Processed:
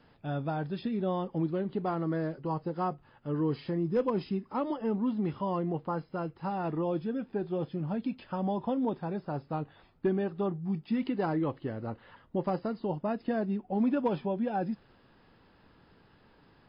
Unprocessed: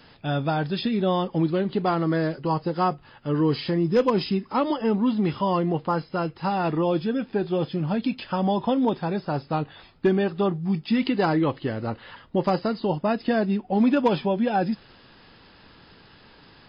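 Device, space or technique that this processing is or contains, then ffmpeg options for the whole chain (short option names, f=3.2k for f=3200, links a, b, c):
through cloth: -af "highshelf=f=2.6k:g=-14,volume=-7.5dB"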